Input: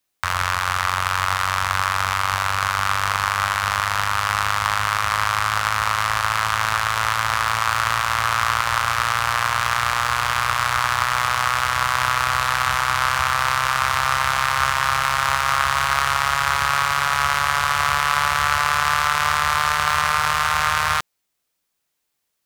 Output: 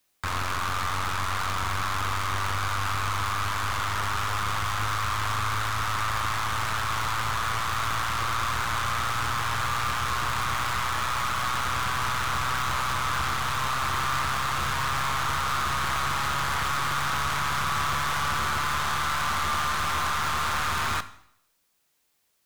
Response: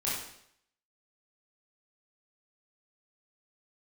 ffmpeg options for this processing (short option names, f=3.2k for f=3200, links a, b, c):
-filter_complex "[0:a]aeval=exprs='(tanh(28.2*val(0)+0.15)-tanh(0.15))/28.2':c=same,asplit=2[a][b];[1:a]atrim=start_sample=2205[c];[b][c]afir=irnorm=-1:irlink=0,volume=-17.5dB[d];[a][d]amix=inputs=2:normalize=0,volume=3.5dB"